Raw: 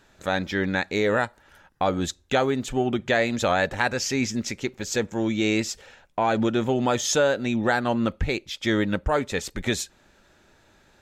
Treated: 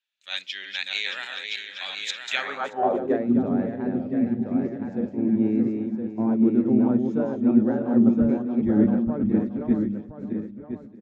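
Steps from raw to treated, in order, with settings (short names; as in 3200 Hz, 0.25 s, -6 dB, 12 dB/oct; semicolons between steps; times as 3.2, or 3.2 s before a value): regenerating reverse delay 0.313 s, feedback 51%, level -2.5 dB; 3.95–4.51 fixed phaser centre 2700 Hz, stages 4; echo 1.019 s -4.5 dB; band-pass sweep 2900 Hz -> 230 Hz, 2.25–3.27; three-band expander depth 70%; gain +4.5 dB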